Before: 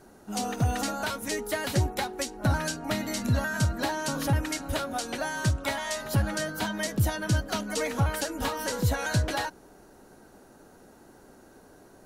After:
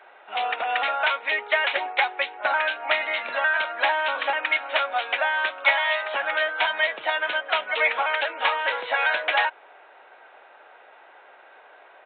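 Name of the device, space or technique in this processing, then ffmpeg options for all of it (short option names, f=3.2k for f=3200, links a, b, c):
musical greeting card: -af "aresample=8000,aresample=44100,highpass=f=620:w=0.5412,highpass=f=620:w=1.3066,equalizer=f=2.3k:t=o:w=0.55:g=9,volume=8.5dB"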